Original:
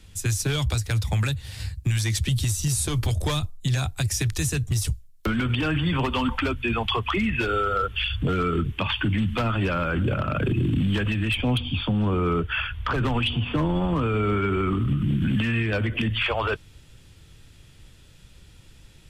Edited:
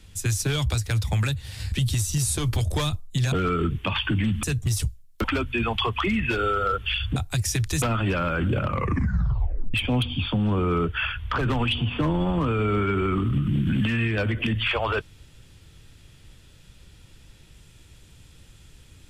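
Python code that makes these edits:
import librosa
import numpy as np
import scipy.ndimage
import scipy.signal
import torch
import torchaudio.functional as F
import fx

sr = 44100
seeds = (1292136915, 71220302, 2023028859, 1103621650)

y = fx.edit(x, sr, fx.cut(start_s=1.72, length_s=0.5),
    fx.swap(start_s=3.82, length_s=0.66, other_s=8.26, other_length_s=1.11),
    fx.cut(start_s=5.29, length_s=1.05),
    fx.tape_stop(start_s=10.18, length_s=1.11), tone=tone)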